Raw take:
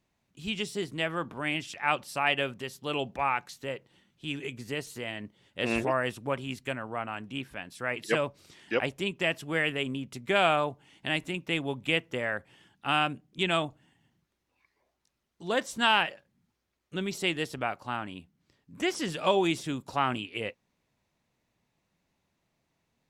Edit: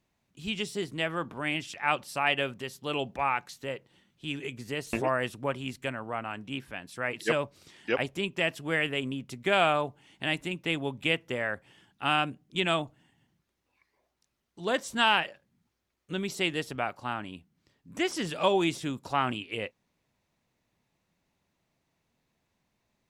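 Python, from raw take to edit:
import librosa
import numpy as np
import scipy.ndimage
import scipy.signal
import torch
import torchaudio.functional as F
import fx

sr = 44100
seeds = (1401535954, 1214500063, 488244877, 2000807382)

y = fx.edit(x, sr, fx.cut(start_s=4.93, length_s=0.83), tone=tone)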